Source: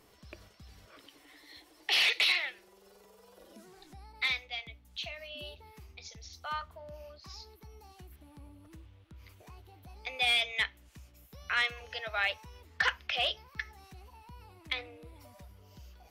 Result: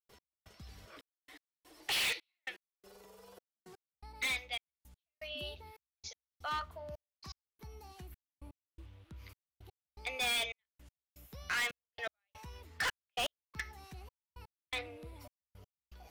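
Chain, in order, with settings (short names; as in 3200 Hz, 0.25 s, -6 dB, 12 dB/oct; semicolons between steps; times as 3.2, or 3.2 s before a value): step gate ".x...xxxxxx.." 164 bpm -60 dB; hard clip -32.5 dBFS, distortion -5 dB; gain +1.5 dB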